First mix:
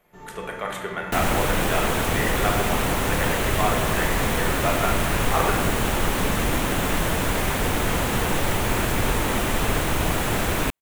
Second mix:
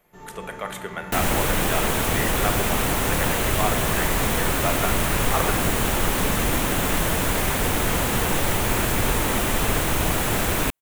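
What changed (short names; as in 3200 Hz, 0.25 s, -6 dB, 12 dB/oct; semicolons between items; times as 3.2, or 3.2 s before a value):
speech: send -7.0 dB; master: add high shelf 6400 Hz +5.5 dB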